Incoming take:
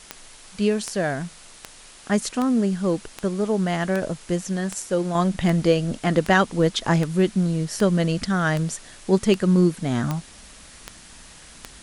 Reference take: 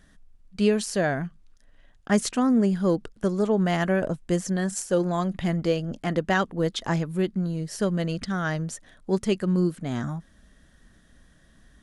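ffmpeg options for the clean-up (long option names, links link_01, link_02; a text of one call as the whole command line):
ffmpeg -i in.wav -af "adeclick=threshold=4,afwtdn=0.0063,asetnsamples=nb_out_samples=441:pad=0,asendcmd='5.15 volume volume -5.5dB',volume=0dB" out.wav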